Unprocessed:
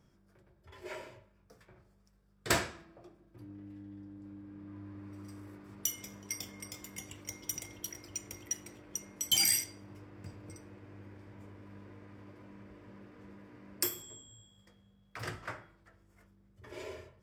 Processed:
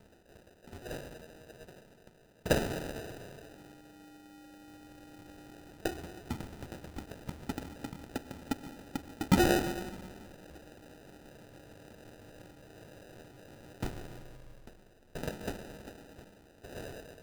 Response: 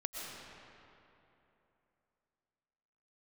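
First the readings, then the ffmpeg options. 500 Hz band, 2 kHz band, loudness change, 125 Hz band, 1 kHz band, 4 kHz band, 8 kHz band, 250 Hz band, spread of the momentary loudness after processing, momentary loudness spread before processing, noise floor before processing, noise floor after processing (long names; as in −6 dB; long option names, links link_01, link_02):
+8.5 dB, +0.5 dB, −1.0 dB, +7.5 dB, +6.0 dB, −7.5 dB, −12.5 dB, +10.0 dB, 23 LU, 22 LU, −67 dBFS, −61 dBFS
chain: -filter_complex "[0:a]acompressor=mode=upward:threshold=-43dB:ratio=2.5,crystalizer=i=2.5:c=0,highpass=610,lowpass=3600,asplit=2[link_01][link_02];[1:a]atrim=start_sample=2205[link_03];[link_02][link_03]afir=irnorm=-1:irlink=0,volume=-2.5dB[link_04];[link_01][link_04]amix=inputs=2:normalize=0,acrusher=samples=40:mix=1:aa=0.000001"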